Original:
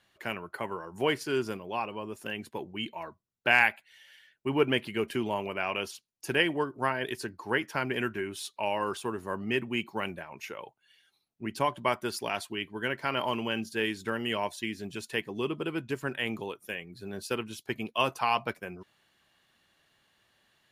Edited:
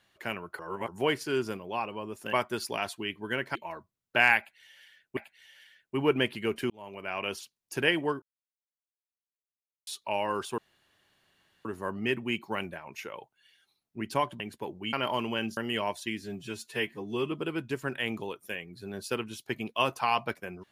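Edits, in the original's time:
0:00.59–0:00.88: reverse
0:02.33–0:02.86: swap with 0:11.85–0:13.07
0:03.69–0:04.48: repeat, 2 plays
0:05.22–0:05.84: fade in
0:06.74–0:08.39: silence
0:09.10: splice in room tone 1.07 s
0:13.71–0:14.13: remove
0:14.78–0:15.51: time-stretch 1.5×

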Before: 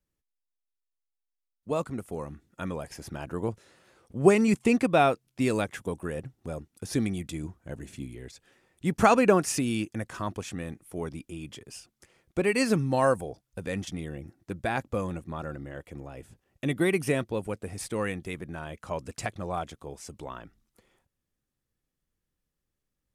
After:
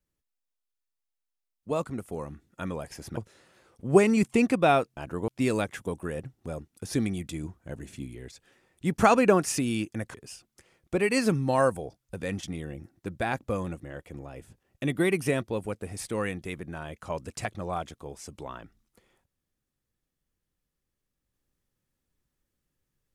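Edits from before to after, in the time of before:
0:03.17–0:03.48: move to 0:05.28
0:10.14–0:11.58: remove
0:15.27–0:15.64: remove

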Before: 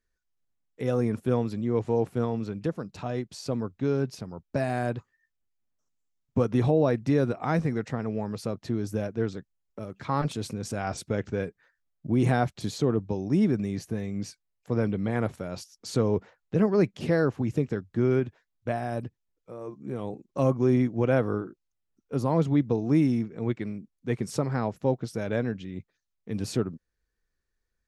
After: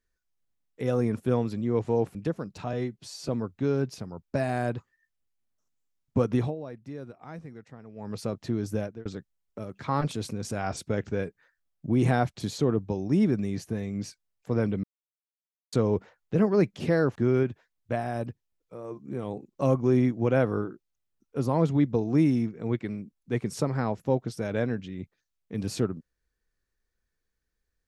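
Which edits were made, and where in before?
0:02.15–0:02.54: remove
0:03.12–0:03.49: time-stretch 1.5×
0:06.55–0:08.37: duck −16 dB, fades 0.21 s
0:09.00–0:09.26: fade out
0:15.04–0:15.93: silence
0:17.36–0:17.92: remove

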